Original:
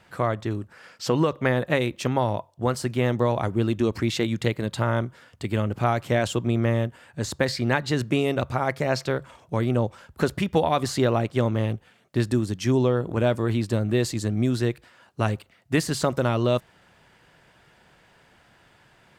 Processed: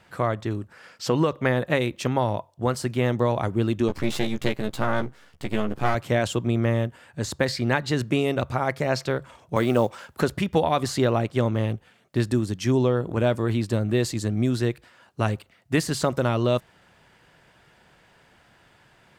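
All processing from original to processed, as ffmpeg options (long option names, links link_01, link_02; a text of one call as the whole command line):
ffmpeg -i in.wav -filter_complex "[0:a]asettb=1/sr,asplit=3[link_01][link_02][link_03];[link_01]atrim=end=3.884[link_04];[link_02]atrim=start=3.88:end=5.95,asetpts=PTS-STARTPTS,afade=type=in:duration=0.004:curve=qsin,afade=type=out:start_time=2.066:duration=0.004:curve=qsin,aeval=exprs='max(val(0),0)':channel_layout=same,asplit=2[link_05][link_06];[link_06]adelay=14,volume=-3.5dB[link_07];[link_05][link_07]amix=inputs=2:normalize=0,atrim=end_sample=91287[link_08];[link_03]atrim=start=5.946[link_09];[link_04][link_08]acrossfade=duration=0.004:curve1=hsin:curve2=qsin[link_10];[link_10][link_09]acrossfade=duration=0.004:curve1=qsin:curve2=hsin,asettb=1/sr,asplit=3[link_11][link_12][link_13];[link_11]atrim=end=9.564[link_14];[link_12]atrim=start=9.56:end=10.21,asetpts=PTS-STARTPTS,afade=type=in:duration=0.004:curve=qsin,afade=type=out:start_time=0.646:duration=0.004:curve=qsin,highpass=frequency=360:poles=1,acontrast=77,acrusher=bits=8:mode=log:mix=0:aa=0.000001[link_15];[link_13]atrim=start=10.206[link_16];[link_14][link_15]acrossfade=duration=0.004:curve1=hsin:curve2=qsin[link_17];[link_17][link_16]acrossfade=duration=0.004:curve1=qsin:curve2=hsin" out.wav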